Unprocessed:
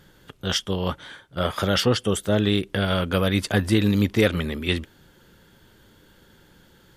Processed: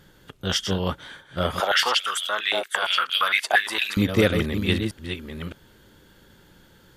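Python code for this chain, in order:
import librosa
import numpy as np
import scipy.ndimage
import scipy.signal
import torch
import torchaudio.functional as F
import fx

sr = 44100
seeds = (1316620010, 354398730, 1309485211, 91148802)

y = fx.reverse_delay(x, sr, ms=614, wet_db=-7.5)
y = fx.filter_held_highpass(y, sr, hz=8.7, low_hz=760.0, high_hz=3200.0, at=(1.6, 3.97))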